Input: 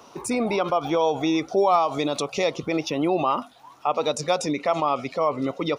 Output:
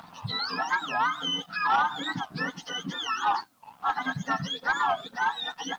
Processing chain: spectrum inverted on a logarithmic axis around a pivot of 990 Hz; high-pass 310 Hz 12 dB/octave; peaking EQ 1 kHz -2.5 dB; upward compressor, threshold -40 dBFS; static phaser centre 950 Hz, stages 4; waveshaping leveller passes 2; Savitzky-Golay filter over 15 samples; added noise white -67 dBFS; warped record 45 rpm, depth 250 cents; trim -3 dB

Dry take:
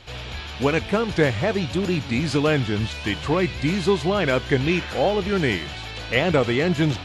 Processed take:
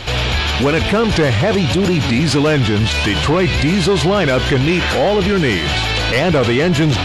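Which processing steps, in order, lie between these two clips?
saturation -16.5 dBFS, distortion -14 dB; loudness maximiser +26 dB; trim -7.5 dB

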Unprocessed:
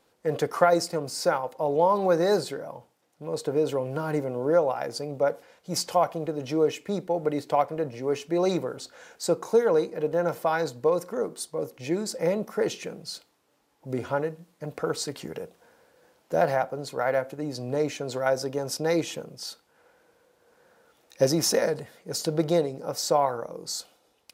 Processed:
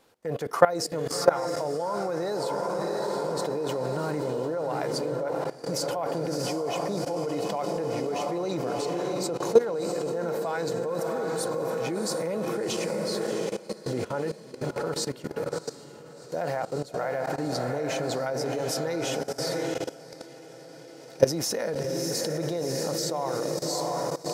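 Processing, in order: echo that smears into a reverb 694 ms, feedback 64%, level -6.5 dB; level held to a coarse grid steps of 17 dB; trim +5 dB

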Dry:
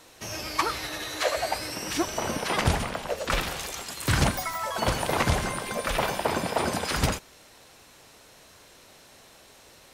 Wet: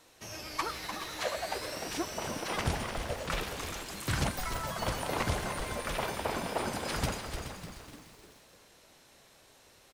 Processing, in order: on a send: frequency-shifting echo 299 ms, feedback 48%, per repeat -120 Hz, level -7.5 dB; on the sum: bit-crushed delay 424 ms, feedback 35%, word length 7-bit, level -11 dB; trim -8 dB

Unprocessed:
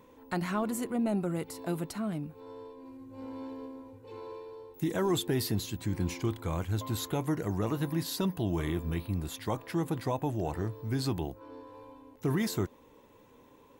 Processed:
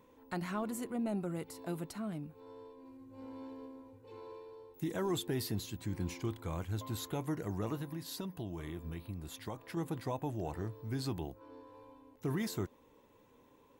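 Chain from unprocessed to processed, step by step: 7.75–9.77 s: compression, threshold -32 dBFS, peak gain reduction 6.5 dB; trim -6 dB

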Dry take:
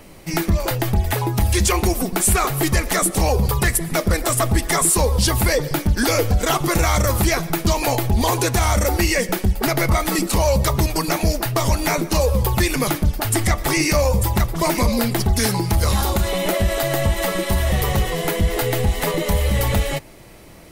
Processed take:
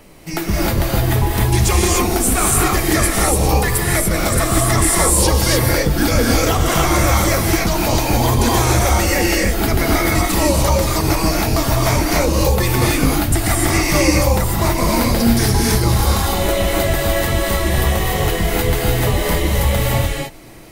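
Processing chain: gated-style reverb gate 320 ms rising, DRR -3.5 dB; trim -1.5 dB

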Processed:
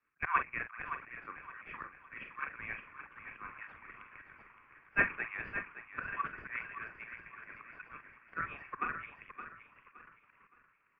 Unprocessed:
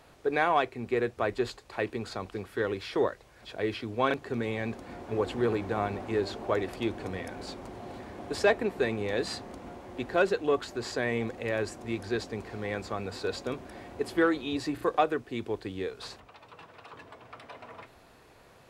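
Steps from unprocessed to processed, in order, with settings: tempo 1.7×; steep high-pass 1.1 kHz 48 dB/octave; doubling 43 ms -8 dB; in parallel at -11.5 dB: decimation with a swept rate 34×, swing 160% 2.4 Hz; on the sum: slow attack 114 ms; elliptic low-pass 2.5 kHz, stop band 40 dB; on a send: feedback delay 568 ms, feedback 49%, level -6.5 dB; on the sum: three bands expanded up and down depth 70%; trim -1 dB

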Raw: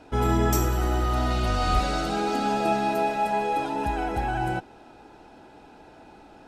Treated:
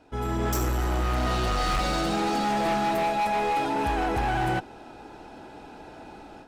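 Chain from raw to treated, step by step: 1.26–3.27 s: comb 5.8 ms, depth 51%; level rider gain up to 12 dB; overload inside the chain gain 15.5 dB; trim -7 dB

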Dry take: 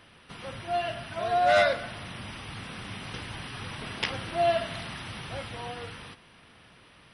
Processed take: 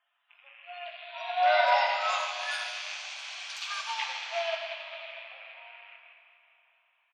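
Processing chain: rattle on loud lows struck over -47 dBFS, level -22 dBFS; Doppler pass-by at 3.14 s, 7 m/s, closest 10 m; spectral replace 3.02–3.91 s, 910–3300 Hz after; steep high-pass 600 Hz 48 dB/octave; loudest bins only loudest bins 64; doubling 23 ms -8 dB; on a send: frequency-shifting echo 202 ms, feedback 42%, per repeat -37 Hz, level -18.5 dB; on the sum: Schroeder reverb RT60 3.2 s, combs from 33 ms, DRR 1 dB; ever faster or slower copies 629 ms, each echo +5 st, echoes 3; upward expansion 1.5:1, over -45 dBFS

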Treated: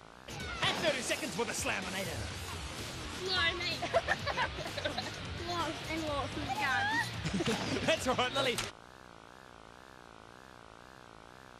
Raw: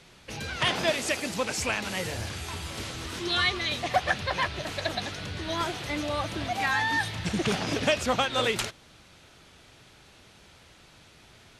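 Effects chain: mains buzz 60 Hz, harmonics 27, -49 dBFS 0 dB/octave; wow and flutter 150 cents; trim -5.5 dB

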